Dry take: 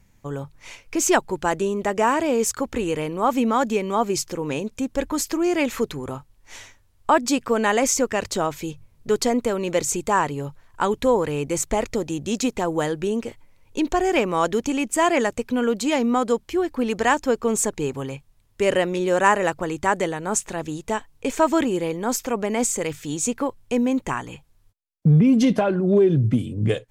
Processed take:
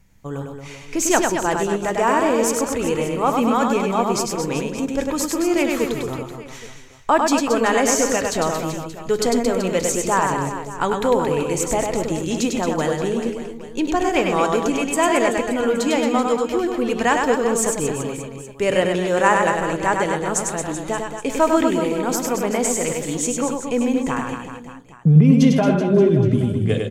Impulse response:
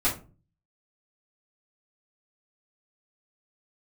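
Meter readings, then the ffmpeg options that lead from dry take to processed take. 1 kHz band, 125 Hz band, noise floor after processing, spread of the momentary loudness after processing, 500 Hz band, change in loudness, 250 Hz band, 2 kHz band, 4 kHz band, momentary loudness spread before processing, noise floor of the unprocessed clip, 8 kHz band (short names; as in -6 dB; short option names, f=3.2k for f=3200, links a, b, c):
+2.5 dB, +4.0 dB, -37 dBFS, 10 LU, +2.5 dB, +2.5 dB, +2.5 dB, +2.5 dB, +2.5 dB, 10 LU, -59 dBFS, +2.5 dB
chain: -filter_complex "[0:a]aecho=1:1:100|225|381.2|576.6|820.7:0.631|0.398|0.251|0.158|0.1,asplit=2[a][b];[1:a]atrim=start_sample=2205,asetrate=31752,aresample=44100[c];[b][c]afir=irnorm=-1:irlink=0,volume=-26.5dB[d];[a][d]amix=inputs=2:normalize=0"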